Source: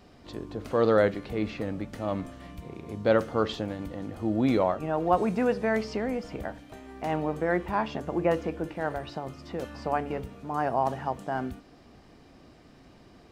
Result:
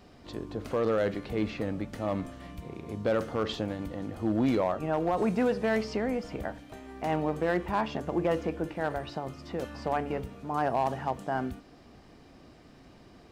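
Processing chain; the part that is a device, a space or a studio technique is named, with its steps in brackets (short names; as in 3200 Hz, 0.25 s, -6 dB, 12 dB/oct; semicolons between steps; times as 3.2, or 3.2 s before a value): limiter into clipper (limiter -16.5 dBFS, peak gain reduction 7.5 dB; hard clip -19.5 dBFS, distortion -22 dB)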